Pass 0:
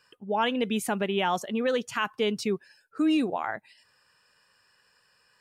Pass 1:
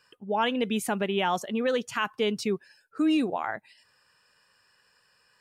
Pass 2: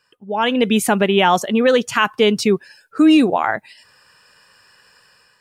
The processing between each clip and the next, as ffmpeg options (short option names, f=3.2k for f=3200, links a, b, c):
-af anull
-af "dynaudnorm=f=180:g=5:m=13dB"